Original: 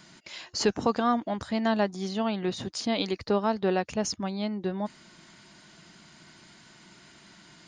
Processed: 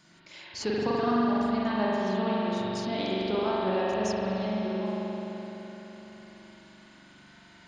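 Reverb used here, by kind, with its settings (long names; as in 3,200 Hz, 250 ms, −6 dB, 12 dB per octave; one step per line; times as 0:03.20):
spring reverb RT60 3.9 s, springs 42 ms, chirp 25 ms, DRR −7.5 dB
level −8 dB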